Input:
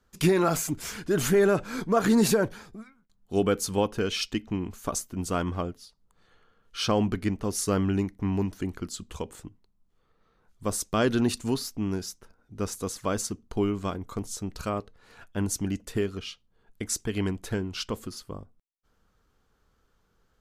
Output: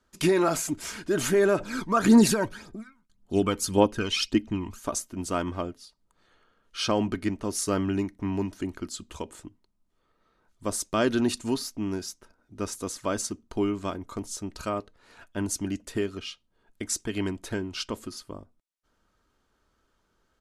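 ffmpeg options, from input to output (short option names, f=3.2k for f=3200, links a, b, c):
-filter_complex "[0:a]asettb=1/sr,asplit=3[a][b][c];[a]atrim=end=1.604[d];[b]atrim=start=1.6:end=4.79,asetpts=PTS-STARTPTS,afade=t=in:d=0.004:c=qsin,afade=t=out:st=3.186:d=0.004:c=qsin,aphaser=in_gain=1:out_gain=1:delay=1.1:decay=0.55:speed=1.8:type=triangular[e];[c]atrim=start=4.786[f];[d][e]acrossfade=d=0.004:c1=hsin:c2=qsin[g];[g][f]acrossfade=d=0.004:c1=qsin:c2=hsin,lowpass=f=12k:w=0.5412,lowpass=f=12k:w=1.3066,lowshelf=f=94:g=-8,aecho=1:1:3.2:0.33"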